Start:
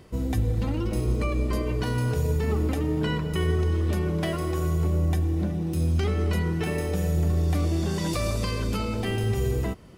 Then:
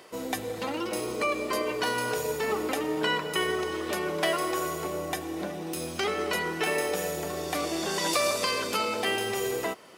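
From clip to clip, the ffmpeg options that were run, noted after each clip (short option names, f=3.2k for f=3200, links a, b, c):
-af "highpass=540,volume=6.5dB"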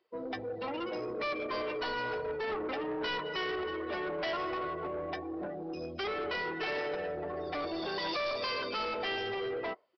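-af "afftdn=nr=28:nf=-35,equalizer=f=180:w=0.92:g=-6.5,aresample=11025,asoftclip=type=tanh:threshold=-31dB,aresample=44100"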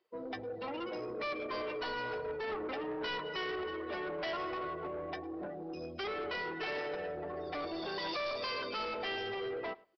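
-filter_complex "[0:a]asplit=2[a][b];[b]adelay=105,lowpass=f=3.8k:p=1,volume=-22.5dB,asplit=2[c][d];[d]adelay=105,lowpass=f=3.8k:p=1,volume=0.16[e];[a][c][e]amix=inputs=3:normalize=0,volume=-3dB"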